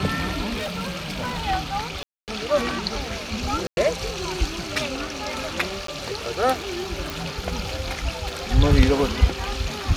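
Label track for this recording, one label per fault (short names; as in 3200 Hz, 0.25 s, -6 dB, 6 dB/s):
0.540000	1.470000	clipped -24.5 dBFS
2.030000	2.280000	gap 0.248 s
3.670000	3.770000	gap 0.101 s
5.870000	5.880000	gap 13 ms
7.100000	7.100000	pop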